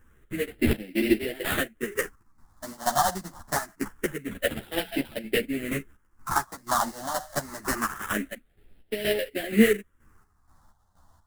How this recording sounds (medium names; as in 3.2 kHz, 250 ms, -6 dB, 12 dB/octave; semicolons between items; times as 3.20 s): aliases and images of a low sample rate 2.4 kHz, jitter 20%; phasing stages 4, 0.25 Hz, lowest notch 410–1100 Hz; chopped level 2.1 Hz, depth 65%, duty 50%; a shimmering, thickened sound